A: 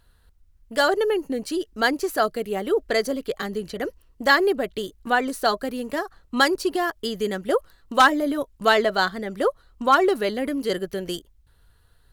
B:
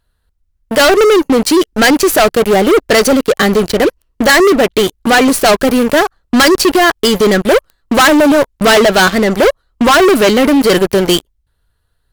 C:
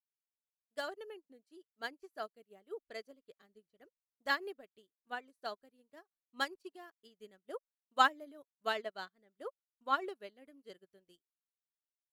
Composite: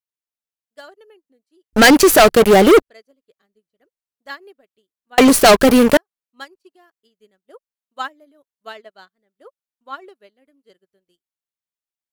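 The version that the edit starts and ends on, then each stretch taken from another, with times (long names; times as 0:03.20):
C
0:01.73–0:02.82: punch in from B
0:05.18–0:05.97: punch in from B
not used: A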